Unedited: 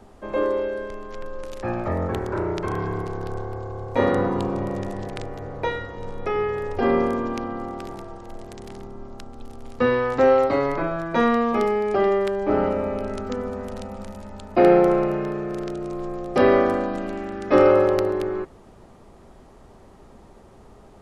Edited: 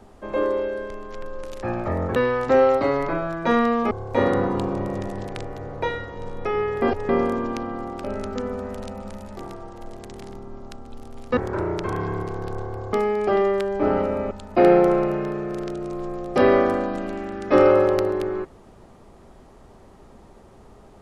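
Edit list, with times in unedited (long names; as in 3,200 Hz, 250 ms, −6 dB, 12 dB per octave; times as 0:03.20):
0:02.16–0:03.72: swap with 0:09.85–0:11.60
0:06.63–0:06.90: reverse
0:12.98–0:14.31: move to 0:07.85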